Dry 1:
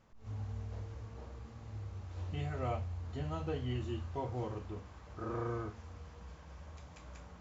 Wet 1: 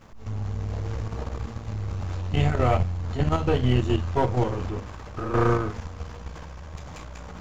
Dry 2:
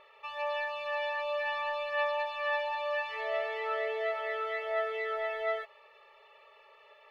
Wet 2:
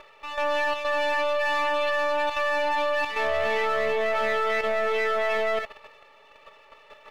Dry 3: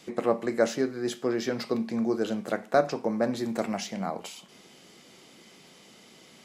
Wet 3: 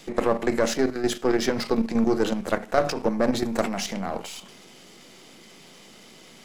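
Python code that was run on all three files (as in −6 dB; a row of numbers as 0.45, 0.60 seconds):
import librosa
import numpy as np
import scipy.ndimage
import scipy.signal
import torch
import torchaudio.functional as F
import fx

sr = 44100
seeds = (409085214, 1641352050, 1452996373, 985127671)

y = np.where(x < 0.0, 10.0 ** (-7.0 / 20.0) * x, x)
y = fx.level_steps(y, sr, step_db=10)
y = fx.transient(y, sr, attack_db=-1, sustain_db=3)
y = y * 10.0 ** (-26 / 20.0) / np.sqrt(np.mean(np.square(y)))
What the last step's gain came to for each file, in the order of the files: +21.0, +15.5, +11.0 decibels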